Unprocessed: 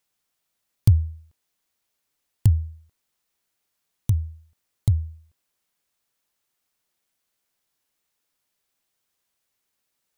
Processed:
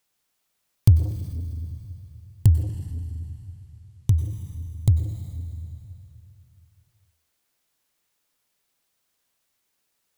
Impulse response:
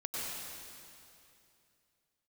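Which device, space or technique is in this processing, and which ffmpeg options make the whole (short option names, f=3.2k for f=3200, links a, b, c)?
saturated reverb return: -filter_complex "[0:a]asplit=2[a][b];[1:a]atrim=start_sample=2205[c];[b][c]afir=irnorm=-1:irlink=0,asoftclip=type=tanh:threshold=-20dB,volume=-6dB[d];[a][d]amix=inputs=2:normalize=0,asettb=1/sr,asplit=3[e][f][g];[e]atrim=end=2.624[h];[f]atrim=start=2.62:end=4.19,asetpts=PTS-STARTPTS,afade=t=in:d=0.004:c=qsin,afade=t=out:st=1.566:d=0.004:c=qsin,lowpass=11k[i];[g]atrim=start=4.186[j];[h][i]acrossfade=d=0.004:c1=hsin:c2=qsin[k];[k][j]acrossfade=d=0.004:c1=qsin:c2=hsin"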